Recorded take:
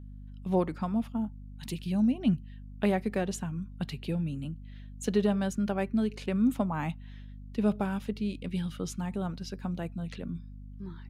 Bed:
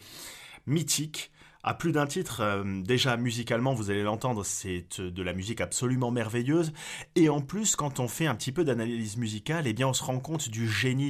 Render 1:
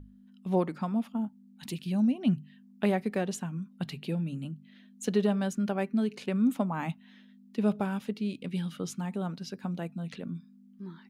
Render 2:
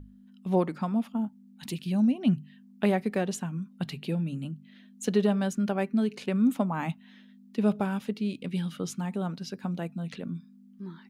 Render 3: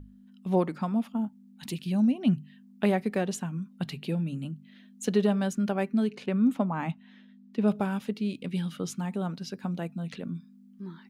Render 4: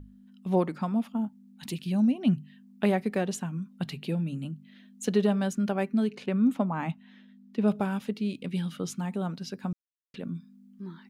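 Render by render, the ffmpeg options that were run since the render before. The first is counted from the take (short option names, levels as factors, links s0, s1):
-af "bandreject=f=50:t=h:w=6,bandreject=f=100:t=h:w=6,bandreject=f=150:t=h:w=6"
-af "volume=1.26"
-filter_complex "[0:a]asettb=1/sr,asplit=3[s0][s1][s2];[s0]atrim=end=6.104[s3];[s1]atrim=start=6.1:end=7.68,asetpts=PTS-STARTPTS,afade=t=in:d=0.004:c=qsin,afade=t=out:st=1.576:d=0.004:c=qsin,highshelf=f=5300:g=-11[s4];[s2]atrim=start=7.676[s5];[s3][s4]acrossfade=d=0.004:c1=hsin:c2=qsin[s6];[s6][s5]acrossfade=d=0.004:c1=qsin:c2=hsin"
-filter_complex "[0:a]asplit=3[s0][s1][s2];[s0]atrim=end=9.73,asetpts=PTS-STARTPTS,afade=t=out:st=9.726:d=0.004:c=hsin[s3];[s1]atrim=start=9.73:end=10.14,asetpts=PTS-STARTPTS,volume=0[s4];[s2]atrim=start=10.14,asetpts=PTS-STARTPTS,afade=t=in:d=0.004:c=hsin[s5];[s3][s4][s5]concat=n=3:v=0:a=1"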